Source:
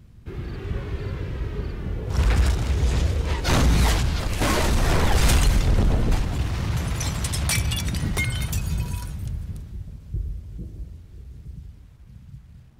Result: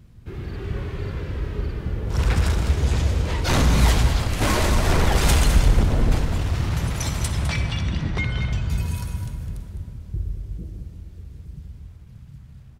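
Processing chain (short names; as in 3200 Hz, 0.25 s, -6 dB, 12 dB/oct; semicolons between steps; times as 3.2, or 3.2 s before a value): 7.28–8.7 air absorption 180 m; echo 0.206 s -10.5 dB; on a send at -7 dB: reverb RT60 2.3 s, pre-delay 43 ms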